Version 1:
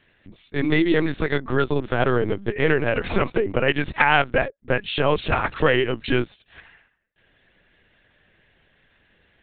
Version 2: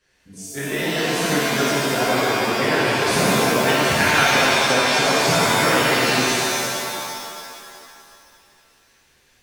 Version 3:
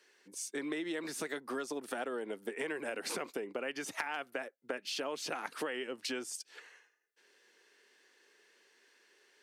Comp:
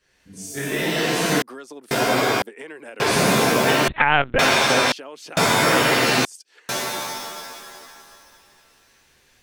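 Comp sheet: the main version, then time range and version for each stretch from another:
2
1.42–1.91 s: from 3
2.42–3.00 s: from 3
3.88–4.39 s: from 1
4.92–5.37 s: from 3
6.25–6.69 s: from 3

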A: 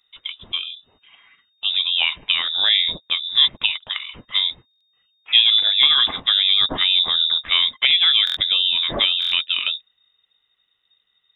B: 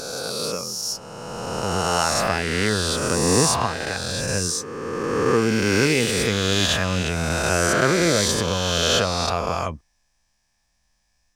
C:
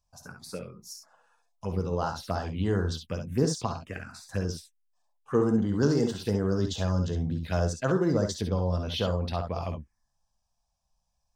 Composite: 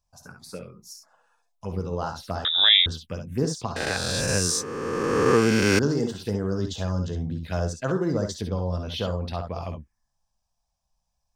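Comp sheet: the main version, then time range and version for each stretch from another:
C
2.45–2.86 s: from A
3.76–5.79 s: from B

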